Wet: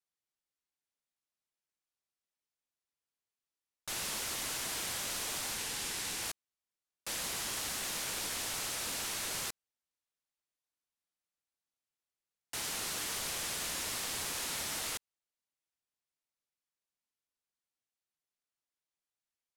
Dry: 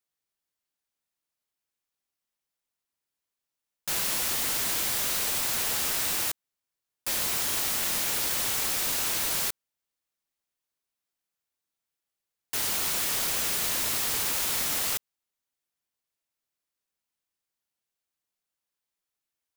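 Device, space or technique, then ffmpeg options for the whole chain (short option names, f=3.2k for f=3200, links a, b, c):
overflowing digital effects unit: -filter_complex "[0:a]asettb=1/sr,asplit=3[a][b][c];[a]atrim=end=5.544[d];[b]atrim=start=5.54:end=6.23,asetpts=PTS-STARTPTS,afade=t=in:d=0.004:c=qsin,afade=t=out:st=0.686:d=0.004:c=qsin,equalizer=f=630:t=o:w=0.33:g=-7,equalizer=f=1.25k:t=o:w=0.33:g=-6,equalizer=f=16k:t=o:w=0.33:g=-8[e];[c]atrim=start=6.226[f];[d][e]acrossfade=d=0.004:c1=hsin:c2=qsin[g];[g][f]acrossfade=d=0.004:c1=qsin:c2=hsin,aeval=exprs='(mod(10*val(0)+1,2)-1)/10':c=same,lowpass=11k,volume=-6.5dB"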